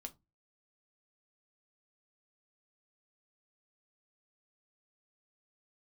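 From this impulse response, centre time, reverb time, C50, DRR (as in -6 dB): 4 ms, 0.20 s, 21.5 dB, 5.5 dB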